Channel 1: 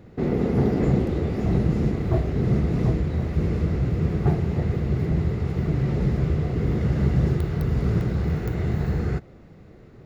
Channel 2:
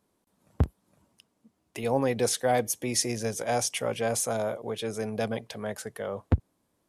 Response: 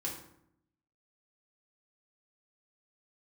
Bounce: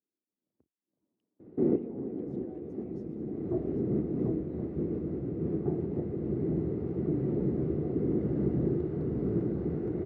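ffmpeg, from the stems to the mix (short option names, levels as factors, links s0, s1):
-filter_complex "[0:a]adelay=1400,volume=1.41[s0];[1:a]lowpass=f=2500:p=1,acompressor=threshold=0.0224:ratio=3,alimiter=level_in=1.68:limit=0.0631:level=0:latency=1:release=341,volume=0.596,volume=0.596,afade=t=in:st=0.85:d=0.39:silence=0.237137,afade=t=out:st=2.98:d=0.42:silence=0.281838,asplit=3[s1][s2][s3];[s2]volume=0.422[s4];[s3]apad=whole_len=505197[s5];[s0][s5]sidechaincompress=threshold=0.00251:ratio=8:attack=16:release=400[s6];[s4]aecho=0:1:791:1[s7];[s6][s1][s7]amix=inputs=3:normalize=0,bandpass=f=320:t=q:w=2.5:csg=0"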